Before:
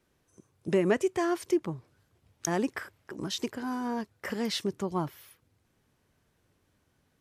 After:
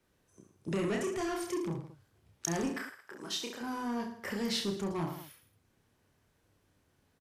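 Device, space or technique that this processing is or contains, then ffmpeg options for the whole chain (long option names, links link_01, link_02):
one-band saturation: -filter_complex "[0:a]asettb=1/sr,asplit=3[link_01][link_02][link_03];[link_01]atrim=end=2.744[link_04];[link_02]atrim=start=2.74:end=3.61,asetpts=PTS-STARTPTS,afade=type=in:duration=0.004:curve=qsin,afade=type=out:start_time=0.866:duration=0.004:curve=qsin,highpass=frequency=690:poles=1[link_05];[link_03]atrim=start=3.606[link_06];[link_04][link_05]acrossfade=duration=0.004:curve1=hsin:curve2=qsin[link_07];[link_07][link_06]acrossfade=duration=0.004:curve1=qsin:curve2=hsin,aecho=1:1:30|66|109.2|161|223.2:0.631|0.398|0.251|0.158|0.1,acrossover=split=200|2500[link_08][link_09][link_10];[link_09]asoftclip=type=tanh:threshold=-30dB[link_11];[link_08][link_11][link_10]amix=inputs=3:normalize=0,volume=-2.5dB"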